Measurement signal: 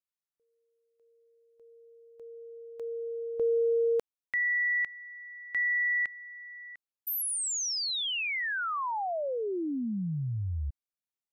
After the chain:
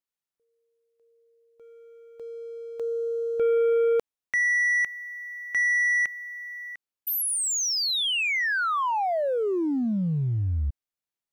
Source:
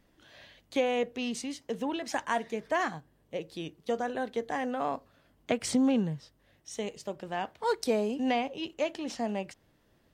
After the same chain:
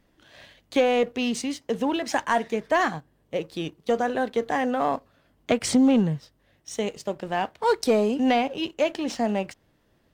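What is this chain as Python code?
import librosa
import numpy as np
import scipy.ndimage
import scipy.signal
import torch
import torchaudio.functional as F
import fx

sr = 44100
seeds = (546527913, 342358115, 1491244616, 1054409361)

y = fx.high_shelf(x, sr, hz=5100.0, db=-2.5)
y = fx.leveller(y, sr, passes=1)
y = y * 10.0 ** (4.0 / 20.0)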